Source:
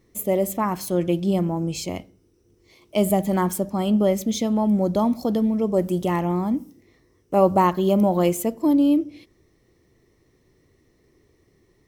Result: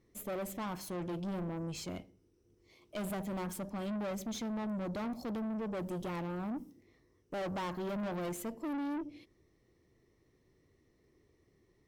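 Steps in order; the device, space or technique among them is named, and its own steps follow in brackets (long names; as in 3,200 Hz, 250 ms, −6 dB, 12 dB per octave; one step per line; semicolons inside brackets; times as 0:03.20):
tube preamp driven hard (tube saturation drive 27 dB, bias 0.3; high-shelf EQ 6,700 Hz −5.5 dB)
level −8 dB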